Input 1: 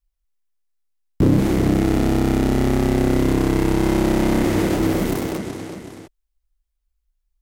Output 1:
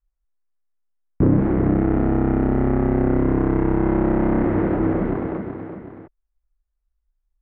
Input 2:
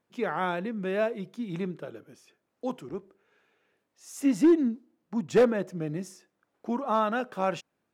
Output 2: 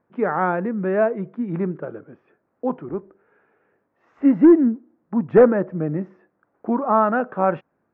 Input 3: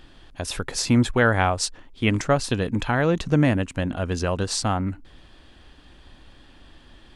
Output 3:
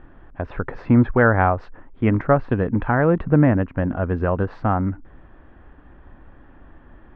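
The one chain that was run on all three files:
LPF 1700 Hz 24 dB/oct; match loudness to -20 LUFS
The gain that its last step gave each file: -1.0, +8.5, +3.5 dB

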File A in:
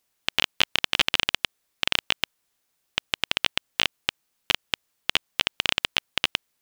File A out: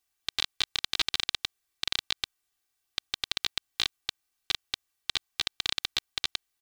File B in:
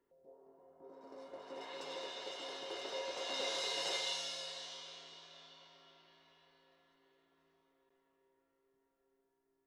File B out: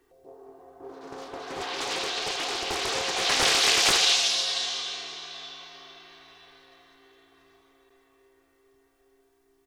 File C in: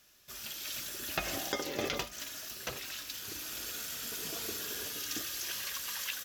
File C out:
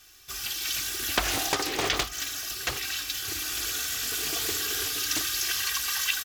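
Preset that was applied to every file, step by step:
bell 440 Hz -7 dB 1.5 oct; comb 2.6 ms, depth 93%; Doppler distortion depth 0.68 ms; normalise peaks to -9 dBFS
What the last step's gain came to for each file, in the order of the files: -7.5, +16.5, +8.0 dB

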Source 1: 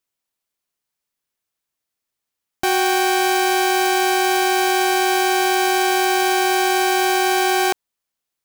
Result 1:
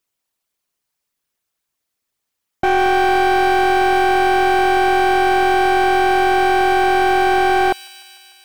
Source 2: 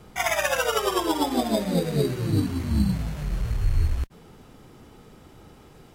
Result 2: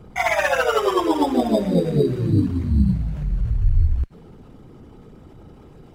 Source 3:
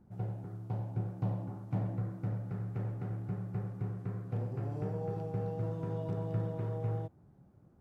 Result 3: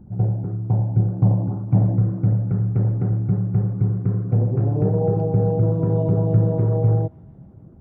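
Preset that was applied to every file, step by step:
formant sharpening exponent 1.5; thin delay 0.149 s, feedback 75%, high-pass 1800 Hz, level -17 dB; slew limiter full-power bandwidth 200 Hz; normalise peaks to -6 dBFS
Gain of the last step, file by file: +4.0, +5.0, +17.5 dB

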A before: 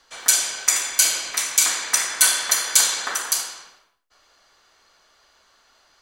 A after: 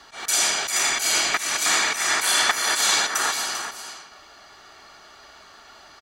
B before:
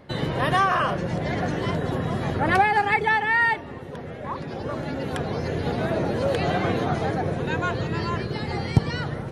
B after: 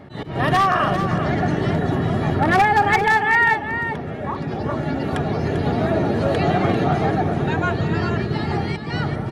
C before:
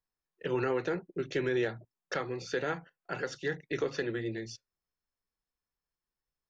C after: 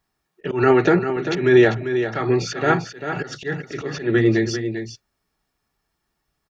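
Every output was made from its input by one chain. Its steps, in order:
high shelf 3500 Hz -7 dB; in parallel at -3 dB: compressor 4:1, threshold -34 dBFS; on the sum: auto swell 0.188 s; notch comb 510 Hz; wavefolder -13.5 dBFS; on a send: echo 0.395 s -9 dB; on the sum: match loudness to -20 LUFS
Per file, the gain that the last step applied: +9.5, +4.0, +16.0 dB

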